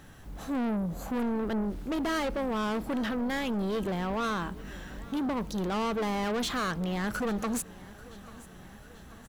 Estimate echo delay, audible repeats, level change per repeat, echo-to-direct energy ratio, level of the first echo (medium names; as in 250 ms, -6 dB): 840 ms, 3, -5.0 dB, -19.0 dB, -20.5 dB